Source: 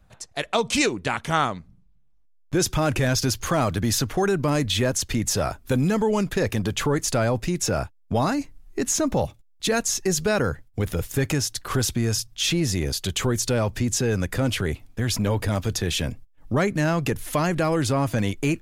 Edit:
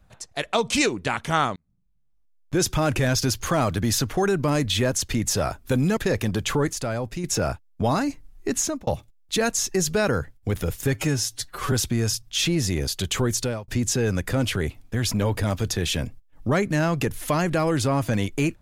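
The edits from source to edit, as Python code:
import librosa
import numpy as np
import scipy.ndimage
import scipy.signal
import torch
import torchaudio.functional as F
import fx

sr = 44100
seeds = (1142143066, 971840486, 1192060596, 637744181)

y = fx.edit(x, sr, fx.fade_in_span(start_s=1.56, length_s=1.06),
    fx.cut(start_s=5.97, length_s=0.31),
    fx.clip_gain(start_s=7.04, length_s=0.51, db=-5.5),
    fx.fade_out_span(start_s=8.9, length_s=0.28),
    fx.stretch_span(start_s=11.25, length_s=0.52, factor=1.5),
    fx.fade_out_span(start_s=13.43, length_s=0.3), tone=tone)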